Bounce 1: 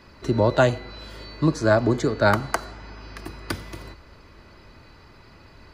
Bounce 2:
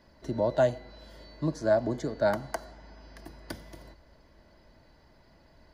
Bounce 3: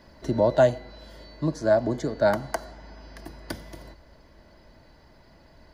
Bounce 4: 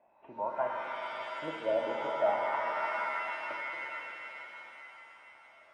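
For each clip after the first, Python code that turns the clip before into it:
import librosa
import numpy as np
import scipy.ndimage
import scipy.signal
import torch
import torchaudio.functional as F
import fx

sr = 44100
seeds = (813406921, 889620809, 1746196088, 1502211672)

y1 = fx.graphic_eq_31(x, sr, hz=(100, 400, 630, 1250, 2500, 4000, 8000), db=(-10, -5, 6, -11, -10, -4, -5))
y1 = y1 * 10.0 ** (-8.5 / 20.0)
y2 = fx.rider(y1, sr, range_db=5, speed_s=2.0)
y2 = y2 * 10.0 ** (5.5 / 20.0)
y3 = fx.freq_compress(y2, sr, knee_hz=2100.0, ratio=4.0)
y3 = fx.wah_lfo(y3, sr, hz=0.45, low_hz=500.0, high_hz=1000.0, q=5.5)
y3 = fx.rev_shimmer(y3, sr, seeds[0], rt60_s=3.7, semitones=7, shimmer_db=-2, drr_db=1.0)
y3 = y3 * 10.0 ** (-2.0 / 20.0)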